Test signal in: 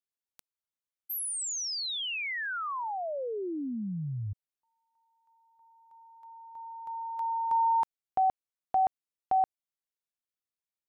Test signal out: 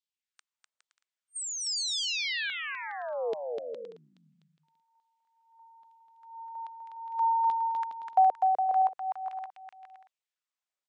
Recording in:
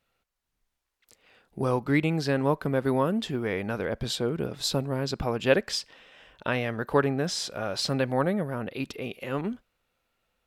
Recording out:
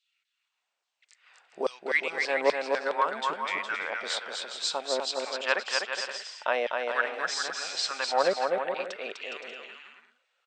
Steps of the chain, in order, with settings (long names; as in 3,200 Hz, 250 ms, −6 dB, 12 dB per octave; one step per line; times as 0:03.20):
auto-filter high-pass saw down 1.2 Hz 470–3,700 Hz
bouncing-ball delay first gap 250 ms, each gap 0.65×, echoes 5
brick-wall band-pass 150–8,700 Hz
level −1.5 dB